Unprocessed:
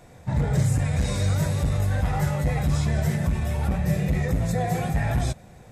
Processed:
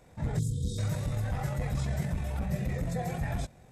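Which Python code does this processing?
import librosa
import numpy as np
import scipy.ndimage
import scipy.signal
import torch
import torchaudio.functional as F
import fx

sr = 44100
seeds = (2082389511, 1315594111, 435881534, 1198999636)

y = fx.stretch_grains(x, sr, factor=0.65, grain_ms=45.0)
y = fx.spec_erase(y, sr, start_s=0.39, length_s=0.39, low_hz=510.0, high_hz=3100.0)
y = y * 10.0 ** (-7.0 / 20.0)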